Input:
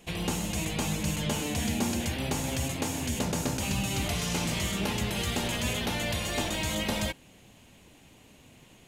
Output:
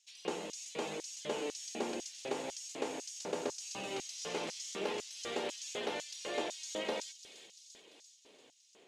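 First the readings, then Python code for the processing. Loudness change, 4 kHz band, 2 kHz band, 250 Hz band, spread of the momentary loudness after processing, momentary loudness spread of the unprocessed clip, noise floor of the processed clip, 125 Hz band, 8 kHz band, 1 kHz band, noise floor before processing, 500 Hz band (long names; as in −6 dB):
−9.5 dB, −10.0 dB, −10.5 dB, −14.0 dB, 14 LU, 2 LU, −64 dBFS, −27.0 dB, −9.0 dB, −7.0 dB, −56 dBFS, −3.0 dB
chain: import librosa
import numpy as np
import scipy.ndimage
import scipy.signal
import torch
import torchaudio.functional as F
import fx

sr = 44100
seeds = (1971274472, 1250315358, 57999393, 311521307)

y = fx.air_absorb(x, sr, metres=90.0)
y = fx.echo_wet_highpass(y, sr, ms=343, feedback_pct=65, hz=4100.0, wet_db=-7.0)
y = fx.filter_lfo_highpass(y, sr, shape='square', hz=2.0, low_hz=420.0, high_hz=5600.0, q=2.7)
y = F.gain(torch.from_numpy(y), -7.0).numpy()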